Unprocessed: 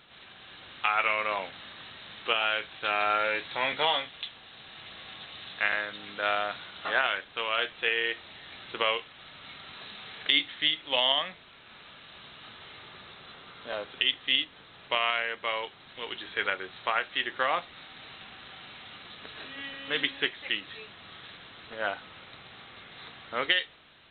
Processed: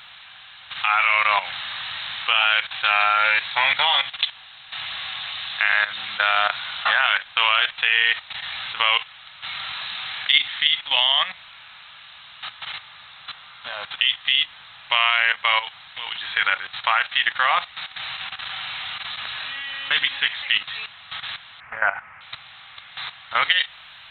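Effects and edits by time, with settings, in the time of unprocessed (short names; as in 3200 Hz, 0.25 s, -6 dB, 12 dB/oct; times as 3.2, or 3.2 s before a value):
21.6–22.21 steep low-pass 2300 Hz 48 dB/oct
whole clip: EQ curve 130 Hz 0 dB, 380 Hz -17 dB, 820 Hz +7 dB, 2500 Hz +10 dB; level quantiser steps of 13 dB; maximiser +10.5 dB; gain -3 dB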